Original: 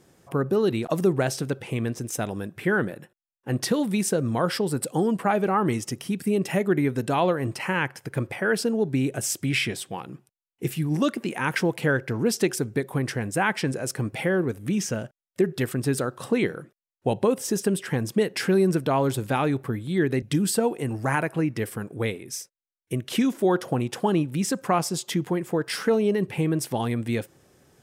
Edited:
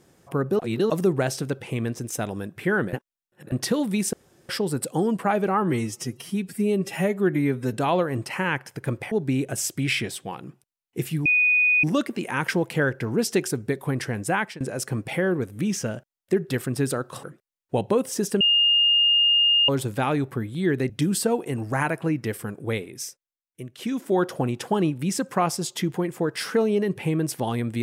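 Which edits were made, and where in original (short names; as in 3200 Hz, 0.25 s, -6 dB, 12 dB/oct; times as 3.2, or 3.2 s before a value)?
0.59–0.9 reverse
2.93–3.52 reverse
4.13–4.49 room tone
5.62–7.03 stretch 1.5×
8.41–8.77 cut
10.91 add tone 2480 Hz -16 dBFS 0.58 s
13.42–13.68 fade out, to -22.5 dB
16.31–16.56 cut
17.73–19.01 bleep 2830 Hz -15.5 dBFS
22.39–23.52 dip -9.5 dB, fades 0.41 s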